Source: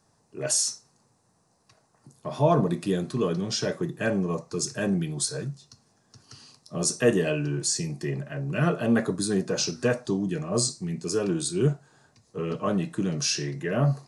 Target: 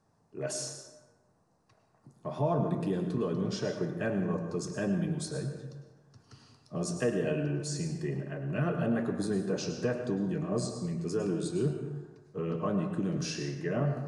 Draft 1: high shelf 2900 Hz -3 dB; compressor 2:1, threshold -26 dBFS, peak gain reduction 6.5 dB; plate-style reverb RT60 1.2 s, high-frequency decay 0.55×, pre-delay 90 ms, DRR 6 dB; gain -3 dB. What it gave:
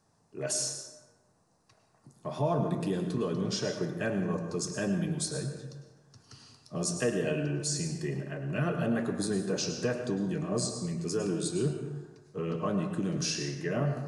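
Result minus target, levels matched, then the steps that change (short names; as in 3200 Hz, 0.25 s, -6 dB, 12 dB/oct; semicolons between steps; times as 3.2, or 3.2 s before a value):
8000 Hz band +6.5 dB
change: high shelf 2900 Hz -12.5 dB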